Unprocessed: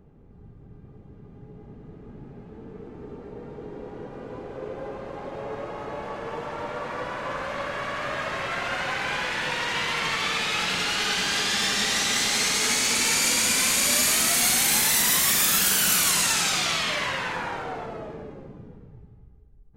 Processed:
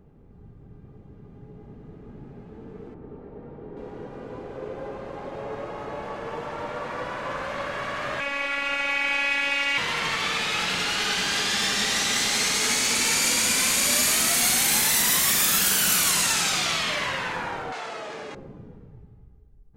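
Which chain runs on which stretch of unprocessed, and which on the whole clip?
2.94–3.77 s: tape spacing loss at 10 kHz 30 dB + hum notches 60/120/180/240/300/360/420/480 Hz + tape noise reduction on one side only decoder only
8.20–9.78 s: peaking EQ 2.4 kHz +14.5 dB 0.39 oct + robot voice 281 Hz
17.72–18.35 s: frequency weighting ITU-R 468 + level flattener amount 70%
whole clip: none

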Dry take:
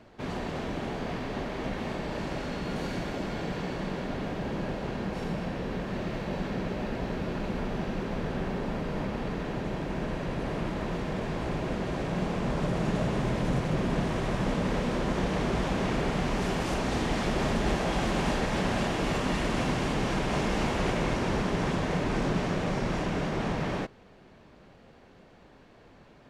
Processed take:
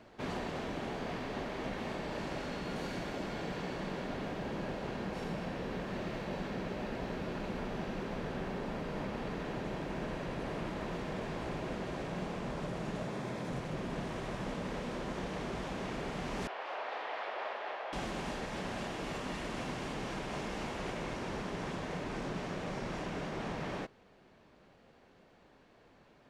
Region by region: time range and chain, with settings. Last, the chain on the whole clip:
13.03–13.52 s: high-pass 100 Hz + band-stop 2.9 kHz, Q 13
16.47–17.93 s: high-pass 560 Hz 24 dB/octave + distance through air 350 m
whole clip: bass shelf 200 Hz -5.5 dB; gain riding; trim -6.5 dB

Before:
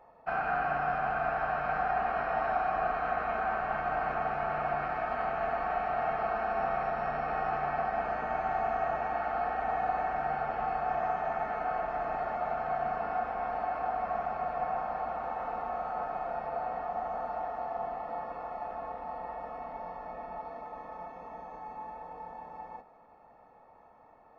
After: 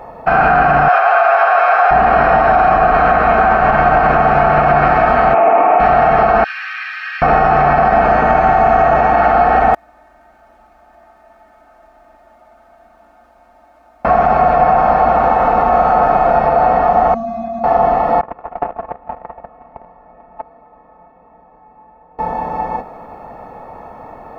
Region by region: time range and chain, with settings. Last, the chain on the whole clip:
0.88–1.91 s: high-pass 570 Hz 24 dB/octave + comb 7.3 ms, depth 50%
5.34–5.80 s: cabinet simulation 310–2700 Hz, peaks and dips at 310 Hz +10 dB, 450 Hz +4 dB, 640 Hz +5 dB, 940 Hz +6 dB, 1.7 kHz -6 dB, 2.4 kHz +6 dB + band-stop 1.5 kHz, Q 24
6.44–7.22 s: steep high-pass 1.8 kHz + comb 2.5 ms, depth 63%
9.74–14.05 s: jump at every zero crossing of -42 dBFS + inverted gate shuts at -26 dBFS, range -40 dB + comb 3.3 ms, depth 74%
17.14–17.64 s: tone controls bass +15 dB, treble +6 dB + feedback comb 230 Hz, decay 0.3 s, harmonics odd, mix 100% + level flattener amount 50%
18.21–22.19 s: gate -37 dBFS, range -26 dB + low-pass 2.6 kHz + loudspeaker Doppler distortion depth 0.22 ms
whole clip: bass shelf 440 Hz +6 dB; loudness maximiser +24 dB; trim -1.5 dB

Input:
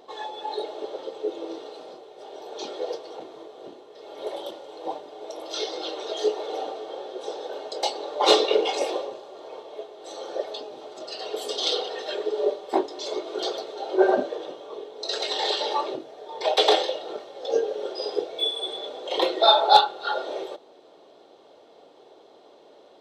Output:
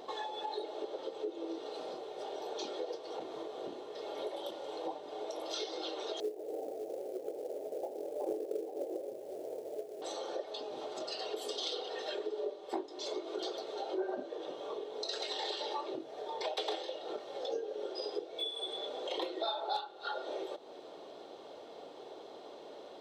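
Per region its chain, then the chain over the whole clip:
6.20–10.02 s: steep low-pass 650 Hz + companded quantiser 6-bit
whole clip: dynamic bell 330 Hz, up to +5 dB, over -39 dBFS, Q 3.3; compression 4:1, threshold -41 dBFS; trim +2.5 dB

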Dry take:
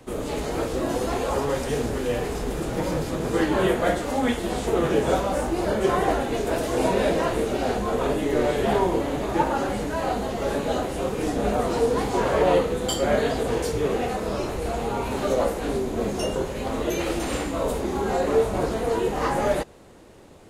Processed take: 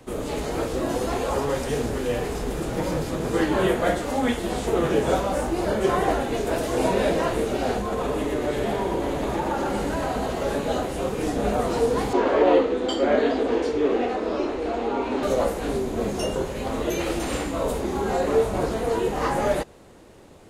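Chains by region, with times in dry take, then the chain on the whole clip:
7.80–10.43 s: compression 4:1, threshold -23 dBFS + feedback delay 122 ms, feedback 57%, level -5 dB
12.13–15.23 s: low-pass 4.2 kHz + resonant low shelf 210 Hz -8.5 dB, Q 3
whole clip: none

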